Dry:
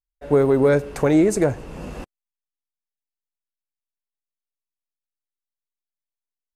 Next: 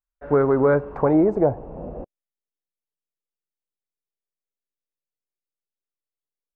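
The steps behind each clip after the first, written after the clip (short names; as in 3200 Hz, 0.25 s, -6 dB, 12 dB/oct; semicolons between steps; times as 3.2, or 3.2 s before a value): low-pass sweep 1400 Hz -> 480 Hz, 0.39–2.45; gain -2.5 dB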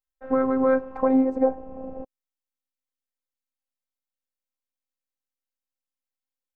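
robotiser 262 Hz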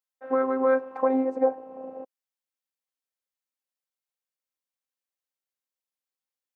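HPF 350 Hz 12 dB/oct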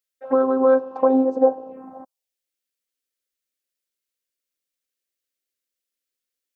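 envelope phaser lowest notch 150 Hz, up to 2100 Hz, full sweep at -27 dBFS; gain +7 dB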